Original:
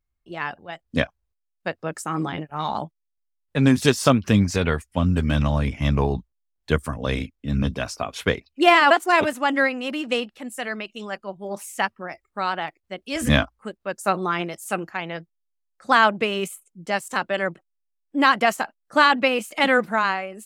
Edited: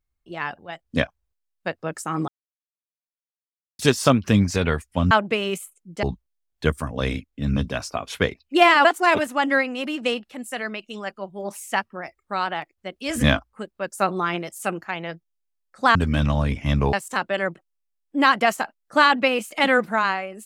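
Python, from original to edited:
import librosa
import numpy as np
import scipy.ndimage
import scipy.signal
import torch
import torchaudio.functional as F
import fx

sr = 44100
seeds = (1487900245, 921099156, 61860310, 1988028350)

y = fx.edit(x, sr, fx.silence(start_s=2.28, length_s=1.51),
    fx.swap(start_s=5.11, length_s=0.98, other_s=16.01, other_length_s=0.92), tone=tone)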